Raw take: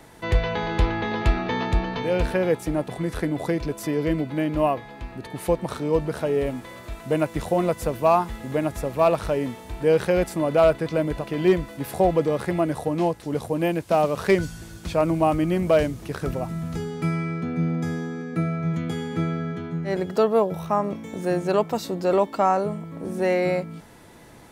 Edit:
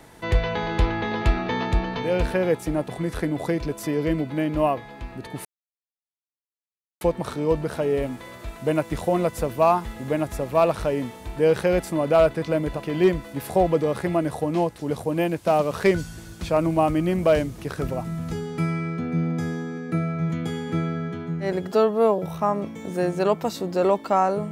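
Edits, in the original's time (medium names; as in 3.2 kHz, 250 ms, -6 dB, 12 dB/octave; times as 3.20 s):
5.45 s: insert silence 1.56 s
20.16–20.47 s: stretch 1.5×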